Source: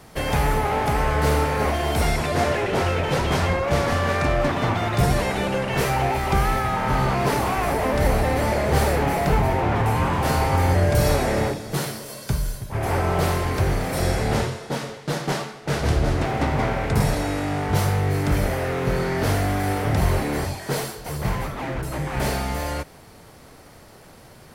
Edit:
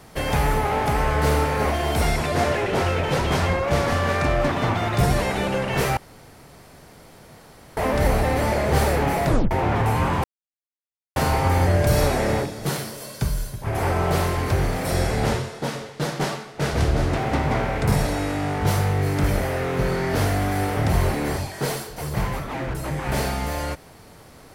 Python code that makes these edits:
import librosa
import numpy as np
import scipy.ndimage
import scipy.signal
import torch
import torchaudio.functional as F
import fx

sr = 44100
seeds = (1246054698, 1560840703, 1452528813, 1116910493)

y = fx.edit(x, sr, fx.room_tone_fill(start_s=5.97, length_s=1.8),
    fx.tape_stop(start_s=9.26, length_s=0.25),
    fx.insert_silence(at_s=10.24, length_s=0.92), tone=tone)